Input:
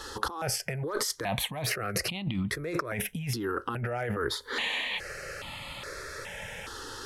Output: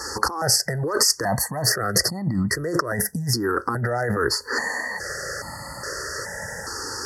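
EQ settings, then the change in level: HPF 57 Hz; brick-wall FIR band-stop 2000–4300 Hz; bell 5900 Hz +6 dB 2.1 oct; +8.0 dB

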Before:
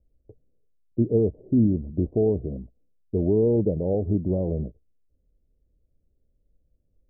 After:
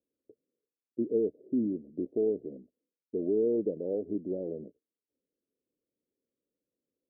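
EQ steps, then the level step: Butterworth band-pass 370 Hz, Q 1.2; -5.5 dB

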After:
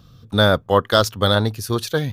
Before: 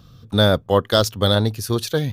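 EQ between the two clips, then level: dynamic EQ 1300 Hz, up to +6 dB, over -33 dBFS, Q 0.96; -1.0 dB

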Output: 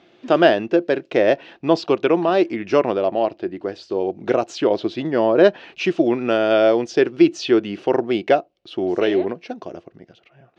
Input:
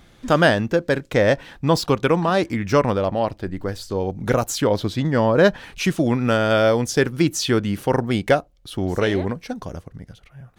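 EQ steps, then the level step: speaker cabinet 210–5300 Hz, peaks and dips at 350 Hz +10 dB, 670 Hz +9 dB, 2700 Hz +8 dB; bell 390 Hz +3.5 dB 0.63 oct; -4.0 dB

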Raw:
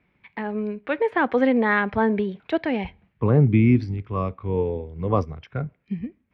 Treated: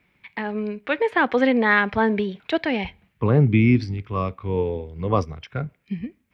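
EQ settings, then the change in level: high shelf 2500 Hz +12 dB; 0.0 dB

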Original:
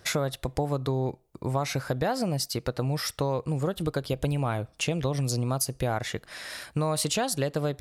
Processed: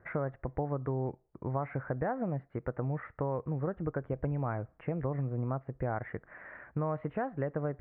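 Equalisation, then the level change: steep low-pass 2000 Hz 48 dB/oct; air absorption 68 m; -5.5 dB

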